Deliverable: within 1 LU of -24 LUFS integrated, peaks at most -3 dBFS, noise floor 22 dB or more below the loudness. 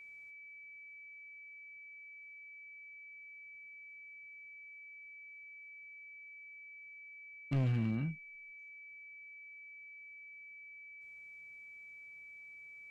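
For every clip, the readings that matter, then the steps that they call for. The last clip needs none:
clipped 0.4%; flat tops at -28.0 dBFS; steady tone 2300 Hz; tone level -50 dBFS; loudness -45.0 LUFS; peak -28.0 dBFS; loudness target -24.0 LUFS
-> clip repair -28 dBFS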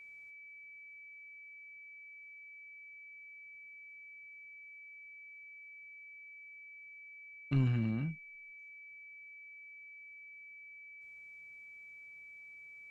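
clipped 0.0%; steady tone 2300 Hz; tone level -50 dBFS
-> notch 2300 Hz, Q 30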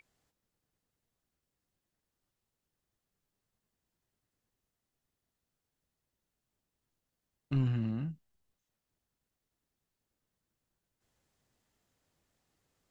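steady tone none; loudness -34.0 LUFS; peak -22.0 dBFS; loudness target -24.0 LUFS
-> gain +10 dB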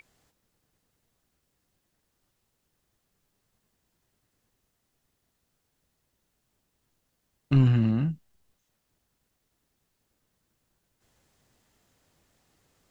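loudness -24.0 LUFS; peak -12.0 dBFS; noise floor -78 dBFS

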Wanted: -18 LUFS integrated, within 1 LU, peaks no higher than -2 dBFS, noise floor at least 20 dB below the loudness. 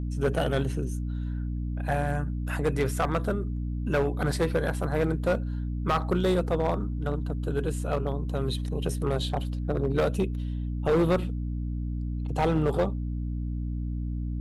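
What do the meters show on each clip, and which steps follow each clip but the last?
clipped 1.3%; flat tops at -18.5 dBFS; hum 60 Hz; harmonics up to 300 Hz; hum level -28 dBFS; loudness -29.0 LUFS; peak -18.5 dBFS; loudness target -18.0 LUFS
-> clip repair -18.5 dBFS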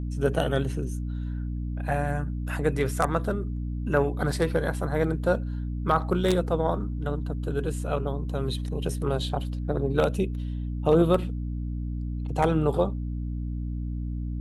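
clipped 0.0%; hum 60 Hz; harmonics up to 300 Hz; hum level -28 dBFS
-> notches 60/120/180/240/300 Hz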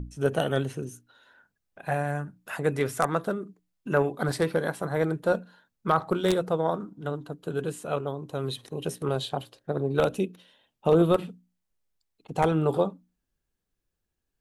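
hum none; loudness -28.0 LUFS; peak -9.0 dBFS; loudness target -18.0 LUFS
-> gain +10 dB; limiter -2 dBFS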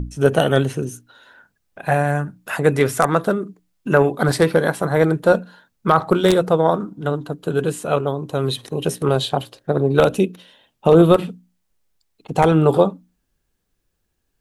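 loudness -18.5 LUFS; peak -2.0 dBFS; noise floor -72 dBFS

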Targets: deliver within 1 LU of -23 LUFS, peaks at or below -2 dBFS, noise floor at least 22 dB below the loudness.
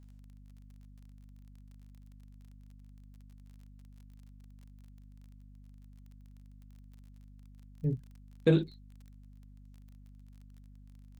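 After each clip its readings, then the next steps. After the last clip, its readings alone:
ticks 30/s; hum 50 Hz; harmonics up to 250 Hz; hum level -51 dBFS; loudness -31.5 LUFS; peak -12.5 dBFS; loudness target -23.0 LUFS
-> de-click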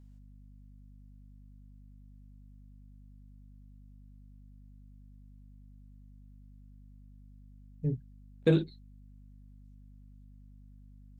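ticks 0/s; hum 50 Hz; harmonics up to 250 Hz; hum level -51 dBFS
-> notches 50/100/150/200/250 Hz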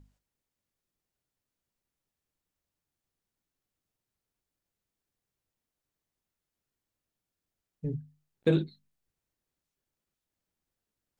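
hum none; loudness -32.0 LUFS; peak -13.0 dBFS; loudness target -23.0 LUFS
-> gain +9 dB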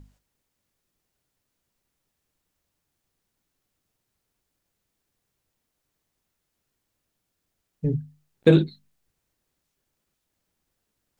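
loudness -23.0 LUFS; peak -4.0 dBFS; noise floor -80 dBFS

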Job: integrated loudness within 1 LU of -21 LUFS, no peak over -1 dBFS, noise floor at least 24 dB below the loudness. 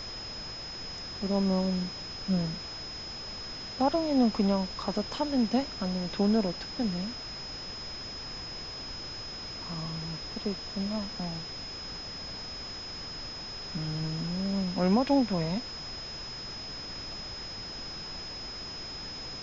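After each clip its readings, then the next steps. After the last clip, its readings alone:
steady tone 5100 Hz; tone level -39 dBFS; noise floor -40 dBFS; noise floor target -57 dBFS; loudness -32.5 LUFS; peak -13.5 dBFS; loudness target -21.0 LUFS
-> notch 5100 Hz, Q 30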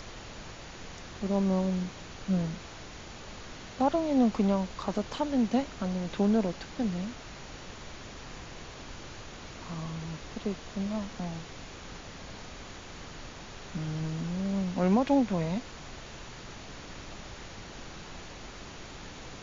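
steady tone none; noise floor -45 dBFS; noise floor target -55 dBFS
-> noise print and reduce 10 dB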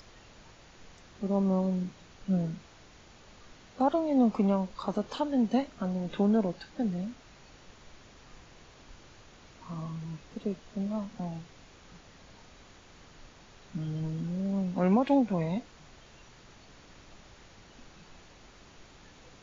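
noise floor -55 dBFS; loudness -30.5 LUFS; peak -14.0 dBFS; loudness target -21.0 LUFS
-> gain +9.5 dB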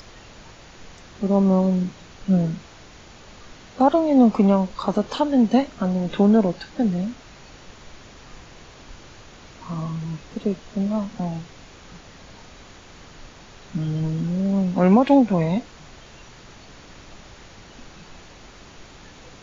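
loudness -21.0 LUFS; peak -4.5 dBFS; noise floor -46 dBFS

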